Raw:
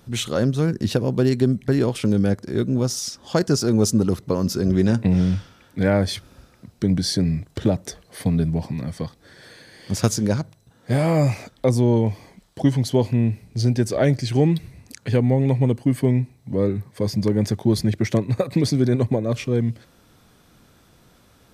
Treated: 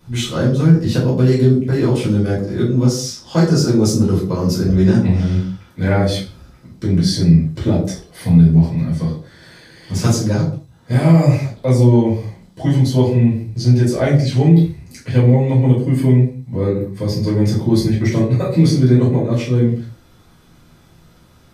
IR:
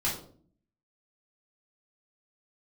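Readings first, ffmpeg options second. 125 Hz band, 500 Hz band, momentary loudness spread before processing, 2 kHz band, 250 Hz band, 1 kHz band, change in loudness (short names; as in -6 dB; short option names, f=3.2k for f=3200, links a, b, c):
+8.0 dB, +3.5 dB, 8 LU, +3.5 dB, +5.5 dB, +4.0 dB, +6.0 dB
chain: -filter_complex "[1:a]atrim=start_sample=2205,afade=t=out:st=0.29:d=0.01,atrim=end_sample=13230[a];[0:a][a]afir=irnorm=-1:irlink=0,alimiter=level_in=-3dB:limit=-1dB:release=50:level=0:latency=1,volume=-1dB"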